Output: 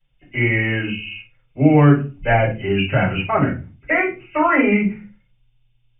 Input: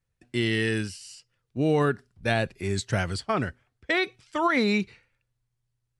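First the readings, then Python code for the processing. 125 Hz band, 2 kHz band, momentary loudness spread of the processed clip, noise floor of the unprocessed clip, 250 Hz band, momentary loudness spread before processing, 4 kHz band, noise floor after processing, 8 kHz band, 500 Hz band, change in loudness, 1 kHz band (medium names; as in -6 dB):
+11.5 dB, +8.5 dB, 15 LU, -79 dBFS, +10.0 dB, 14 LU, +1.5 dB, -62 dBFS, under -40 dB, +7.0 dB, +9.0 dB, +9.0 dB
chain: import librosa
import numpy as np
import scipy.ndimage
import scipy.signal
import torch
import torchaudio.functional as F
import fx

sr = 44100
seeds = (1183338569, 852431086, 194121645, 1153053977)

y = fx.freq_compress(x, sr, knee_hz=2000.0, ratio=4.0)
y = fx.room_shoebox(y, sr, seeds[0], volume_m3=120.0, walls='furnished', distance_m=5.2)
y = F.gain(torch.from_numpy(y), -4.0).numpy()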